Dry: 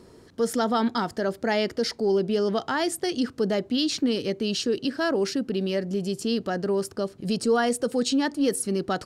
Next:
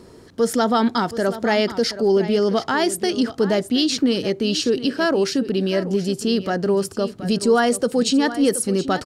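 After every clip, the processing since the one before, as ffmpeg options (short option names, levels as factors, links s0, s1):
-af "aecho=1:1:725:0.211,volume=1.88"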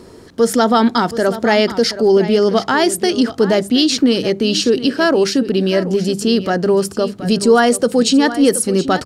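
-af "bandreject=f=50:t=h:w=6,bandreject=f=100:t=h:w=6,bandreject=f=150:t=h:w=6,bandreject=f=200:t=h:w=6,volume=1.88"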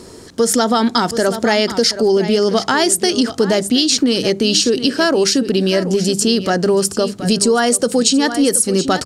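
-af "equalizer=f=7600:t=o:w=1.6:g=9.5,acompressor=threshold=0.251:ratio=6,volume=1.19"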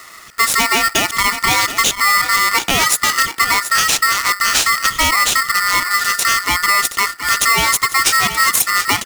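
-af "highpass=160,aeval=exprs='val(0)*sgn(sin(2*PI*1600*n/s))':c=same"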